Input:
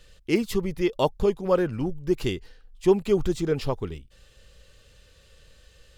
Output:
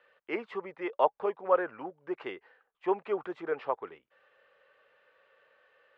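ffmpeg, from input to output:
ffmpeg -i in.wav -filter_complex "[0:a]highpass=390,lowpass=2700,acrossover=split=570 2100:gain=0.178 1 0.0708[link_01][link_02][link_03];[link_01][link_02][link_03]amix=inputs=3:normalize=0,volume=3dB" out.wav

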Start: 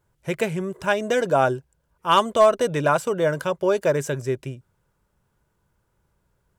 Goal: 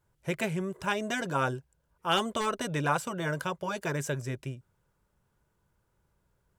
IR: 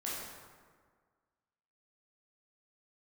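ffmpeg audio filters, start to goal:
-af "afftfilt=real='re*lt(hypot(re,im),0.708)':imag='im*lt(hypot(re,im),0.708)':win_size=1024:overlap=0.75,adynamicequalizer=threshold=0.0126:dfrequency=390:dqfactor=1.2:tfrequency=390:tqfactor=1.2:attack=5:release=100:ratio=0.375:range=2:mode=cutabove:tftype=bell,volume=-4dB"

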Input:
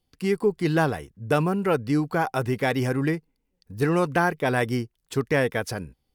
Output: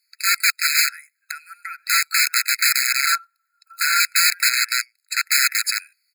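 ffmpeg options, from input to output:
ffmpeg -i in.wav -filter_complex "[0:a]highpass=150,asplit=3[link_01][link_02][link_03];[link_01]afade=type=out:start_time=0.88:duration=0.02[link_04];[link_02]acompressor=threshold=-33dB:ratio=16,afade=type=in:start_time=0.88:duration=0.02,afade=type=out:start_time=1.77:duration=0.02[link_05];[link_03]afade=type=in:start_time=1.77:duration=0.02[link_06];[link_04][link_05][link_06]amix=inputs=3:normalize=0,asplit=2[link_07][link_08];[link_08]adelay=93.29,volume=-29dB,highshelf=frequency=4000:gain=-2.1[link_09];[link_07][link_09]amix=inputs=2:normalize=0,aeval=exprs='(mod(12.6*val(0)+1,2)-1)/12.6':channel_layout=same,equalizer=frequency=500:width_type=o:width=0.33:gain=9,equalizer=frequency=1000:width_type=o:width=0.33:gain=-12,equalizer=frequency=1600:width_type=o:width=0.33:gain=-5,asettb=1/sr,asplit=3[link_10][link_11][link_12];[link_10]atrim=end=3.054[link_13];[link_11]atrim=start=3.05:end=4,asetpts=PTS-STARTPTS,afade=type=in:duration=0.004:curve=qsin,afade=type=out:start_time=0.946:duration=0.004:curve=qsin,aeval=exprs='val(0)*sin(2*PI*870*n/s)':channel_layout=same[link_14];[link_12]atrim=start=3.996[link_15];[link_13][link_14]acrossfade=duration=0.004:curve1=hsin:curve2=qsin[link_16];[link_16][link_15]acrossfade=duration=0.004:curve1=qsin:curve2=hsin,asettb=1/sr,asplit=3[link_17][link_18][link_19];[link_17]atrim=end=4.504[link_20];[link_18]atrim=start=4.5:end=5.25,asetpts=PTS-STARTPTS,afade=type=in:duration=0.004:curve=qsin,afade=type=out:start_time=0.746:duration=0.004:curve=qsin,highshelf=frequency=9300:gain=-7.5[link_21];[link_19]atrim=start=5.246[link_22];[link_20][link_21]acrossfade=duration=0.004:curve1=hsin:curve2=qsin[link_23];[link_23][link_22]acrossfade=duration=0.004:curve1=qsin:curve2=hsin,alimiter=level_in=18dB:limit=-1dB:release=50:level=0:latency=1,afftfilt=real='re*eq(mod(floor(b*sr/1024/1300),2),1)':imag='im*eq(mod(floor(b*sr/1024/1300),2),1)':win_size=1024:overlap=0.75,volume=-1.5dB" out.wav

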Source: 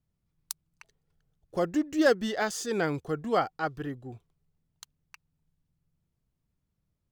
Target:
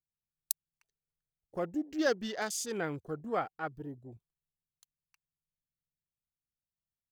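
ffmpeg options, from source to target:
ffmpeg -i in.wav -af "aemphasis=mode=production:type=50kf,afwtdn=0.01,volume=-7dB" out.wav

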